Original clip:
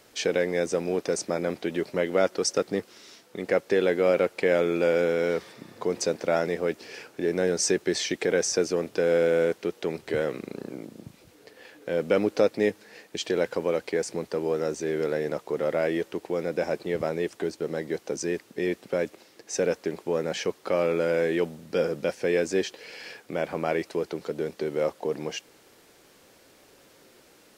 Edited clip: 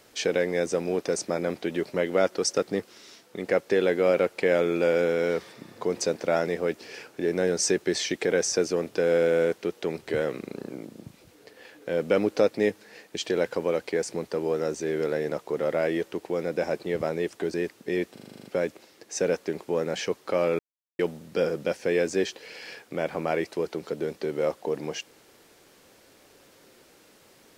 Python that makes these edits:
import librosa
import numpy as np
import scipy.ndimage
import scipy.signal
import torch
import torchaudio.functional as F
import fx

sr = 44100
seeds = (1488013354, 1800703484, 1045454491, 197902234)

y = fx.edit(x, sr, fx.cut(start_s=17.54, length_s=0.7),
    fx.stutter(start_s=18.83, slice_s=0.04, count=9),
    fx.silence(start_s=20.97, length_s=0.4), tone=tone)